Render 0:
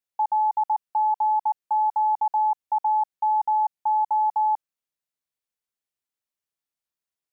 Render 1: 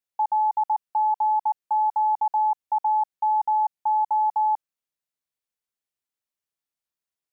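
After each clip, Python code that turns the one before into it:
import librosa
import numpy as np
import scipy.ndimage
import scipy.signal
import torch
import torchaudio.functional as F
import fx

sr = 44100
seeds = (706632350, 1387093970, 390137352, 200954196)

y = x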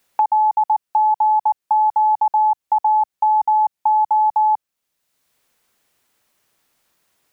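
y = fx.band_squash(x, sr, depth_pct=70)
y = y * librosa.db_to_amplitude(6.0)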